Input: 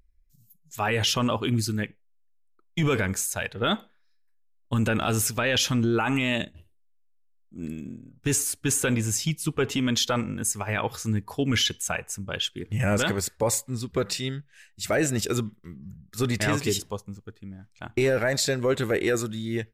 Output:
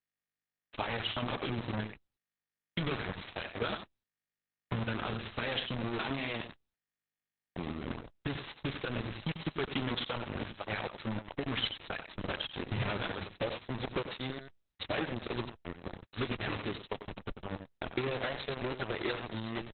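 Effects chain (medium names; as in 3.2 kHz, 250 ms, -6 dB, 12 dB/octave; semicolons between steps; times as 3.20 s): hum notches 50/100/150/200/250 Hz; compression 16:1, threshold -34 dBFS, peak gain reduction 15.5 dB; bit crusher 6-bit; on a send: delay 93 ms -9 dB; on the sum: trim +2.5 dB; Opus 6 kbps 48 kHz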